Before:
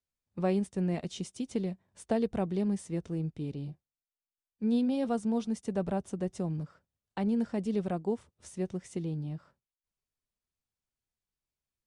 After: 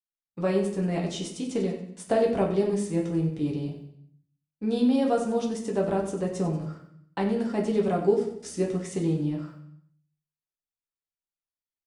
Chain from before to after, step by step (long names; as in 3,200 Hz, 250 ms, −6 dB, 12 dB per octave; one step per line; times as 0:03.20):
low-shelf EQ 130 Hz −10.5 dB
noise gate with hold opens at −56 dBFS
repeating echo 93 ms, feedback 41%, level −12 dB
speech leveller within 3 dB 2 s
0:08.00–0:08.62: thirty-one-band graphic EQ 315 Hz +11 dB, 1,000 Hz −7 dB, 5,000 Hz +7 dB
rectangular room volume 47 cubic metres, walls mixed, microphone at 0.63 metres
level +4.5 dB